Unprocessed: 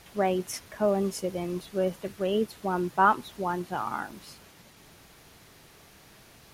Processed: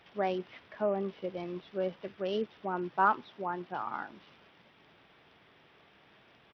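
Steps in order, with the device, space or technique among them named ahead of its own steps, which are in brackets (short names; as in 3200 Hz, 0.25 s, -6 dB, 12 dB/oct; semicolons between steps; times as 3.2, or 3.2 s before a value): 3.26–3.97 elliptic band-pass 110–5500 Hz; Bluetooth headset (HPF 240 Hz 6 dB/oct; downsampling 8000 Hz; gain -4.5 dB; SBC 64 kbps 44100 Hz)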